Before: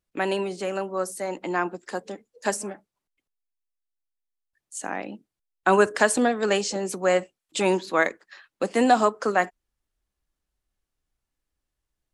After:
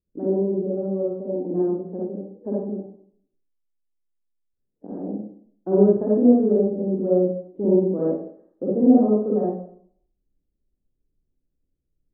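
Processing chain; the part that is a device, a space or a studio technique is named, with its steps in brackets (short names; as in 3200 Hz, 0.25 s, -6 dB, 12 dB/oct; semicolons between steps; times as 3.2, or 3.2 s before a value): next room (LPF 460 Hz 24 dB/oct; reverb RT60 0.60 s, pre-delay 41 ms, DRR -6.5 dB)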